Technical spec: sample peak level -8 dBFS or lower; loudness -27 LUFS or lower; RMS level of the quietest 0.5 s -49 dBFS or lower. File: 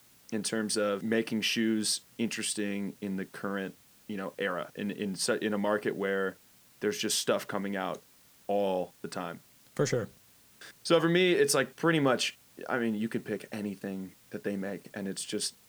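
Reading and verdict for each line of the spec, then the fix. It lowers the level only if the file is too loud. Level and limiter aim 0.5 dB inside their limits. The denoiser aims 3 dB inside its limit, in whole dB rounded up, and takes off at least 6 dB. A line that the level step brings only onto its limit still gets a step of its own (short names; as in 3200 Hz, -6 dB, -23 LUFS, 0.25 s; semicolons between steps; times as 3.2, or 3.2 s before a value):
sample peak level -11.5 dBFS: OK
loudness -31.0 LUFS: OK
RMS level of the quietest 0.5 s -60 dBFS: OK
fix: none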